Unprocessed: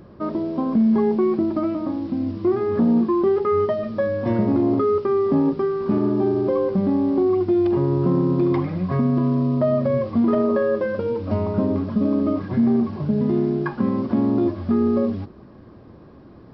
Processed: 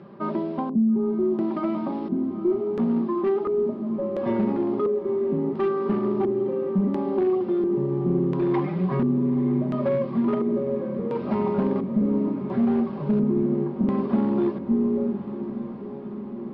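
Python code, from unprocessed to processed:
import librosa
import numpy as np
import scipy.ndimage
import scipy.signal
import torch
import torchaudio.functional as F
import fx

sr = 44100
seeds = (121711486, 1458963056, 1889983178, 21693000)

y = scipy.signal.sosfilt(scipy.signal.butter(4, 120.0, 'highpass', fs=sr, output='sos'), x)
y = fx.peak_eq(y, sr, hz=860.0, db=4.5, octaves=1.0)
y = fx.notch(y, sr, hz=620.0, q=18.0)
y = y + 0.63 * np.pad(y, (int(5.1 * sr / 1000.0), 0))[:len(y)]
y = fx.rider(y, sr, range_db=4, speed_s=0.5)
y = np.clip(10.0 ** (11.5 / 20.0) * y, -1.0, 1.0) / 10.0 ** (11.5 / 20.0)
y = fx.filter_lfo_lowpass(y, sr, shape='square', hz=0.72, low_hz=340.0, high_hz=3100.0, q=1.1)
y = fx.echo_diffused(y, sr, ms=925, feedback_pct=74, wet_db=-12.5)
y = F.gain(torch.from_numpy(y), -6.0).numpy()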